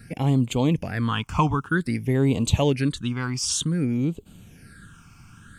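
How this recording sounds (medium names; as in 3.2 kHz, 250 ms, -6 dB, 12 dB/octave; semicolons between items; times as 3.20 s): phasing stages 8, 0.53 Hz, lowest notch 510–1700 Hz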